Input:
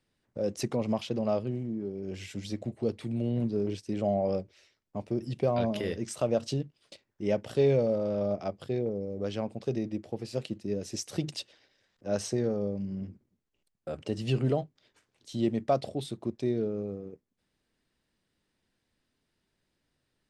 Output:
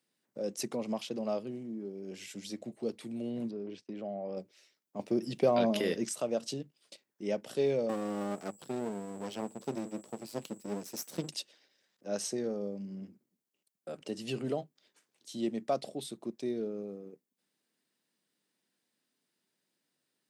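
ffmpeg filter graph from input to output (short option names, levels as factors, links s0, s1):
-filter_complex "[0:a]asettb=1/sr,asplit=3[s0][s1][s2];[s0]atrim=end=3.514[s3];[s1]atrim=start=3.51:end=4.37,asetpts=PTS-STARTPTS,afade=t=in:d=0.004:c=qsin,afade=t=out:st=0.856:d=0.004:c=qsin,lowpass=3200,agate=range=0.158:threshold=0.00158:ratio=16:release=100:detection=peak,acompressor=threshold=0.0224:ratio=2:attack=3.2:release=140:knee=1:detection=peak[s4];[s2]atrim=start=4.366[s5];[s3][s4]acrossfade=d=0.004:c1=hsin:c2=qsin[s6];[s6][s5]acrossfade=d=0.004:c1=qsin:c2=hsin,asettb=1/sr,asplit=3[s7][s8][s9];[s7]atrim=end=4.994[s10];[s8]atrim=start=4.99:end=6.09,asetpts=PTS-STARTPTS,afade=t=in:d=0.004:c=qsin,afade=t=out:st=1.096:d=0.004:c=qsin,acontrast=69,equalizer=f=9100:w=1.5:g=-4[s11];[s9]atrim=start=6.086[s12];[s10][s11]acrossfade=d=0.004:c1=hsin:c2=qsin[s13];[s13][s12]acrossfade=d=0.004:c1=qsin:c2=hsin,asettb=1/sr,asplit=3[s14][s15][s16];[s14]atrim=end=7.894[s17];[s15]atrim=start=7.89:end=11.29,asetpts=PTS-STARTPTS,afade=t=in:d=0.004:c=qsin,afade=t=out:st=3.396:d=0.004:c=qsin,aeval=exprs='val(0)+0.00126*sin(2*PI*7800*n/s)':c=same,lowshelf=f=360:g=9,aeval=exprs='max(val(0),0)':c=same[s18];[s16]atrim=start=11.286[s19];[s17][s18]acrossfade=d=0.004:c1=hsin:c2=qsin[s20];[s20][s19]acrossfade=d=0.004:c1=qsin:c2=hsin,highpass=f=170:w=0.5412,highpass=f=170:w=1.3066,highshelf=f=6400:g=12,volume=0.562"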